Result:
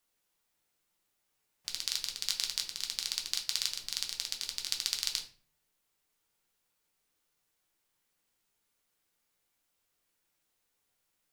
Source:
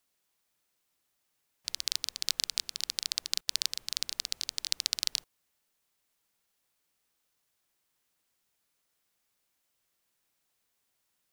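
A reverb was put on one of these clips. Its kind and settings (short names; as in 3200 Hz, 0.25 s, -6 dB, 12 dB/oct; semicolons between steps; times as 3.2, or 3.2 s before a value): shoebox room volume 33 m³, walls mixed, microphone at 0.45 m; gain -3 dB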